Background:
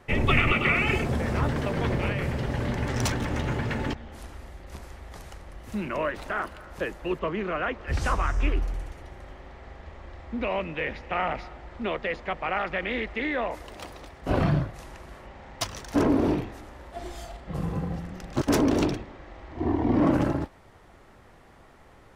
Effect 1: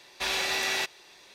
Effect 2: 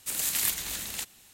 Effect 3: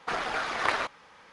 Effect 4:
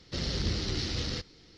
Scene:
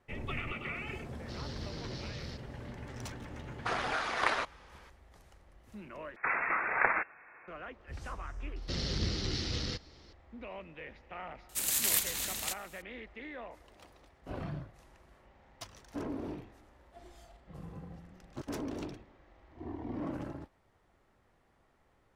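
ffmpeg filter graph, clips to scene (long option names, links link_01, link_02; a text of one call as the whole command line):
ffmpeg -i bed.wav -i cue0.wav -i cue1.wav -i cue2.wav -i cue3.wav -filter_complex "[4:a]asplit=2[link_01][link_02];[3:a]asplit=2[link_03][link_04];[0:a]volume=-16.5dB[link_05];[link_04]lowpass=frequency=2300:width_type=q:width=0.5098,lowpass=frequency=2300:width_type=q:width=0.6013,lowpass=frequency=2300:width_type=q:width=0.9,lowpass=frequency=2300:width_type=q:width=2.563,afreqshift=-2700[link_06];[link_05]asplit=2[link_07][link_08];[link_07]atrim=end=6.164[link_09];[link_06]atrim=end=1.32,asetpts=PTS-STARTPTS,volume=-0.5dB[link_10];[link_08]atrim=start=7.476[link_11];[link_01]atrim=end=1.57,asetpts=PTS-STARTPTS,volume=-13dB,afade=type=in:duration=0.004:curve=hsin,afade=type=out:start_time=1.566:duration=0.004:curve=hsin,adelay=1160[link_12];[link_03]atrim=end=1.32,asetpts=PTS-STARTPTS,volume=-3dB,afade=type=in:duration=0.004:curve=hsin,afade=type=out:start_time=1.316:duration=0.004:curve=hsin,adelay=3580[link_13];[link_02]atrim=end=1.57,asetpts=PTS-STARTPTS,volume=-2.5dB,afade=type=in:duration=0.004:curve=hsin,afade=type=out:start_time=1.566:duration=0.004:curve=hsin,adelay=8560[link_14];[2:a]atrim=end=1.33,asetpts=PTS-STARTPTS,volume=-1.5dB,afade=type=in:duration=0.004:curve=hsin,afade=type=out:start_time=1.326:duration=0.004:curve=hsin,adelay=11490[link_15];[link_09][link_10]acrossfade=duration=0.004:curve1=hsin:curve2=hsin[link_16];[link_16][link_11]acrossfade=duration=0.004:curve1=hsin:curve2=hsin[link_17];[link_17][link_12][link_13][link_14][link_15]amix=inputs=5:normalize=0" out.wav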